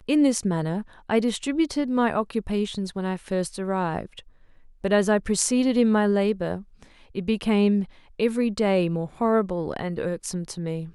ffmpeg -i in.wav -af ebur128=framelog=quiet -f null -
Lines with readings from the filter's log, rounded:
Integrated loudness:
  I:         -24.5 LUFS
  Threshold: -34.9 LUFS
Loudness range:
  LRA:         3.4 LU
  Threshold: -44.8 LUFS
  LRA low:   -26.9 LUFS
  LRA high:  -23.5 LUFS